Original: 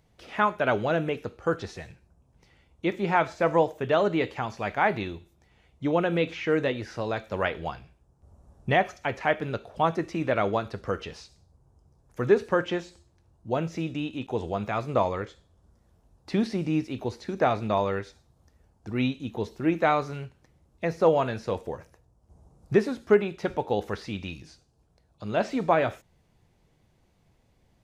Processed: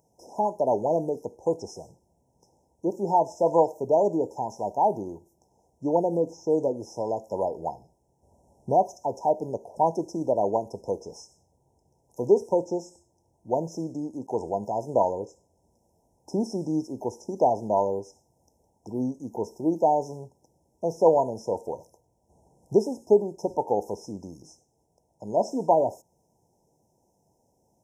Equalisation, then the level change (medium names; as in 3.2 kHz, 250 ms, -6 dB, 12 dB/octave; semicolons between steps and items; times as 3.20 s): high-pass 440 Hz 6 dB/octave; brick-wall FIR band-stop 1–5.1 kHz; +4.5 dB